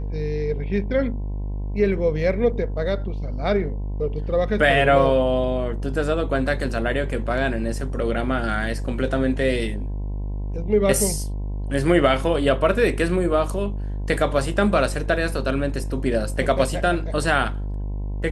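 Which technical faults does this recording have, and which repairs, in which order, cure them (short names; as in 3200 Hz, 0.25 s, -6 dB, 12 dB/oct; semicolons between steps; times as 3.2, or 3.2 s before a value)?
buzz 50 Hz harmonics 21 -27 dBFS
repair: de-hum 50 Hz, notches 21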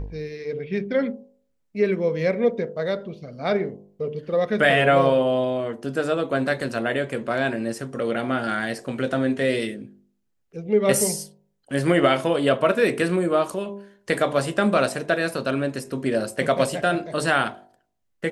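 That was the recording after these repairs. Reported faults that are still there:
none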